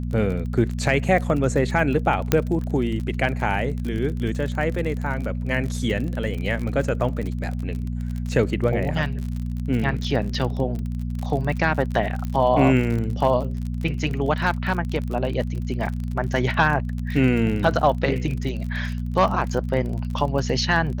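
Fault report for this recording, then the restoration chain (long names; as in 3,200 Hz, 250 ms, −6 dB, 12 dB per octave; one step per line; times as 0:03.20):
surface crackle 40 per second −28 dBFS
mains hum 60 Hz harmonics 4 −27 dBFS
0:02.32: click −3 dBFS
0:12.25: click −17 dBFS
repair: click removal
hum removal 60 Hz, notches 4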